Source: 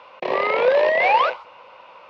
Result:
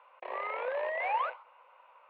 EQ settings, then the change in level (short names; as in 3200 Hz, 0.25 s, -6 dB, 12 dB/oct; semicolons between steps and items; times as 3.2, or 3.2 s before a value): HPF 800 Hz 12 dB/oct; LPF 3300 Hz 6 dB/oct; air absorption 450 m; -9.0 dB